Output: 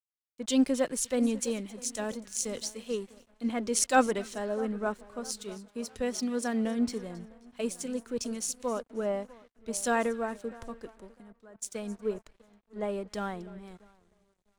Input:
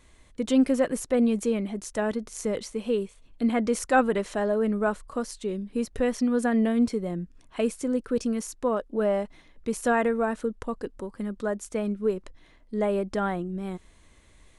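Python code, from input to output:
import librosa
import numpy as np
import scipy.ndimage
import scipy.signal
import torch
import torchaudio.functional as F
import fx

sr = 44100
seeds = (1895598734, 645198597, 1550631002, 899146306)

p1 = fx.peak_eq(x, sr, hz=5700.0, db=11.0, octaves=2.4)
p2 = p1 + fx.echo_split(p1, sr, split_hz=1500.0, low_ms=652, high_ms=271, feedback_pct=52, wet_db=-14.0, dry=0)
p3 = np.sign(p2) * np.maximum(np.abs(p2) - 10.0 ** (-44.5 / 20.0), 0.0)
p4 = fx.highpass(p3, sr, hz=65.0, slope=6, at=(5.55, 6.78))
p5 = fx.level_steps(p4, sr, step_db=18, at=(11.2, 11.62))
p6 = fx.dynamic_eq(p5, sr, hz=1800.0, q=1.1, threshold_db=-39.0, ratio=4.0, max_db=-3)
p7 = fx.band_widen(p6, sr, depth_pct=70)
y = p7 * librosa.db_to_amplitude(-6.5)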